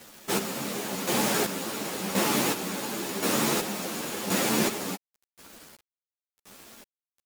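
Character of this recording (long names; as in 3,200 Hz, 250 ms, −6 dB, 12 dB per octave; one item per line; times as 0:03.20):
chopped level 0.93 Hz, depth 60%, duty 35%
a quantiser's noise floor 8 bits, dither none
a shimmering, thickened sound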